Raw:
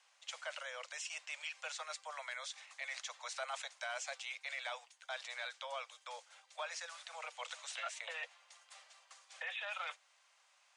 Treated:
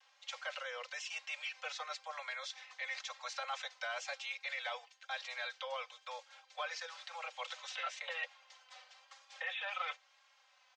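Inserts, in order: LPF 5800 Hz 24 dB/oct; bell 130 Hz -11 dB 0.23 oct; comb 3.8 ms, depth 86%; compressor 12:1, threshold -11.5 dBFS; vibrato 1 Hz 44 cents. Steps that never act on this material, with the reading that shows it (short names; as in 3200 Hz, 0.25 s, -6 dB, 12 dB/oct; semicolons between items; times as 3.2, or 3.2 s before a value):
bell 130 Hz: input band starts at 430 Hz; compressor, threshold -11.5 dBFS: input peak -26.5 dBFS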